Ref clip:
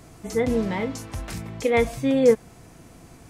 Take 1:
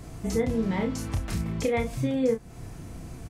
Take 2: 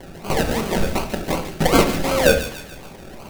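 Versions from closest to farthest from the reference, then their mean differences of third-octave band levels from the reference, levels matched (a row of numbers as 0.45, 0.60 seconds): 1, 2; 4.5, 9.5 decibels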